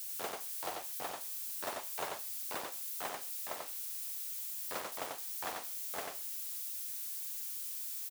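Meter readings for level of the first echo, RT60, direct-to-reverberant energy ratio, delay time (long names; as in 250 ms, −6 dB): −3.5 dB, no reverb audible, no reverb audible, 91 ms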